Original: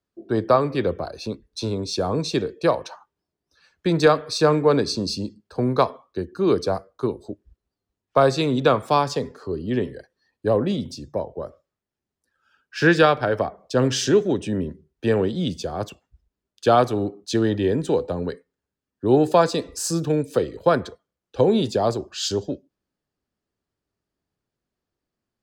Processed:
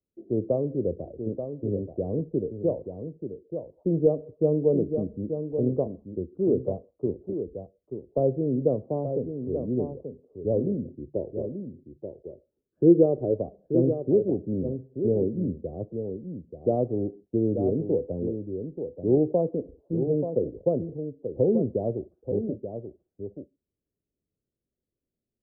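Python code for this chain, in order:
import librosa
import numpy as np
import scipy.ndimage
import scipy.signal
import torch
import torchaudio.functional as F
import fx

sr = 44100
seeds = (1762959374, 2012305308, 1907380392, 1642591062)

y = scipy.signal.sosfilt(scipy.signal.butter(6, 580.0, 'lowpass', fs=sr, output='sos'), x)
y = fx.peak_eq(y, sr, hz=370.0, db=9.5, octaves=0.45, at=(10.83, 13.34))
y = y + 10.0 ** (-8.0 / 20.0) * np.pad(y, (int(883 * sr / 1000.0), 0))[:len(y)]
y = y * 10.0 ** (-4.0 / 20.0)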